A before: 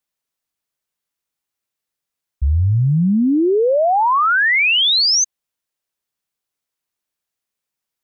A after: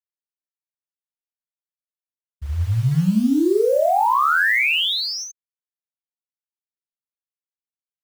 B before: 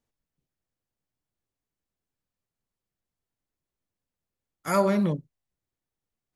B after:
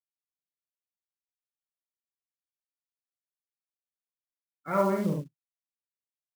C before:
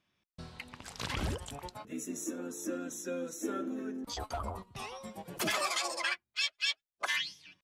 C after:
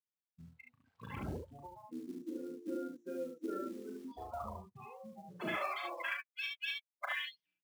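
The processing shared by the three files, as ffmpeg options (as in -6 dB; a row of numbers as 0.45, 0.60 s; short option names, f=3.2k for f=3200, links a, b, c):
-filter_complex "[0:a]lowpass=3.1k,afftdn=nr=29:nf=-34,highpass=97,acrusher=bits=6:mode=log:mix=0:aa=0.000001,asplit=2[a][b];[b]aecho=0:1:37|71:0.562|0.668[c];[a][c]amix=inputs=2:normalize=0,volume=-5dB"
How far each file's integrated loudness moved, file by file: -4.0, -3.0, -6.0 LU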